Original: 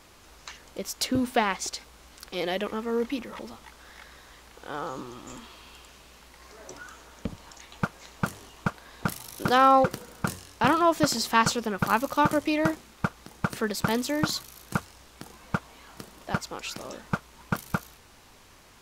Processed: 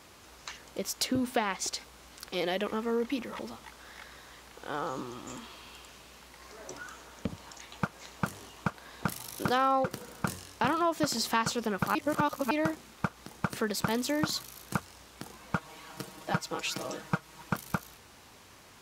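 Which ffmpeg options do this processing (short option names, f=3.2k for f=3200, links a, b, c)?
-filter_complex "[0:a]asettb=1/sr,asplit=3[a][b][c];[a]atrim=end=15.554[d];[b]atrim=start=15.55:end=17.53,asetpts=PTS-STARTPTS,afade=t=in:d=0.004:c=qsin,afade=t=out:st=1.976:d=0.004:c=qsin,aecho=1:1:6.3:0.78,atrim=end_sample=87318[e];[c]atrim=start=17.526[f];[d][e]acrossfade=d=0.004:c1=hsin:c2=qsin[g];[g][f]acrossfade=d=0.004:c1=qsin:c2=hsin,asplit=3[h][i][j];[h]atrim=end=11.952[k];[i]atrim=start=11.948:end=12.512,asetpts=PTS-STARTPTS,areverse[l];[j]atrim=start=12.508[m];[k][l]acrossfade=d=0.004:c1=hsin:c2=hsin[n];[n][m]acrossfade=d=0.004:c1=hsin:c2=hsin,highpass=66,acompressor=threshold=-27dB:ratio=2.5"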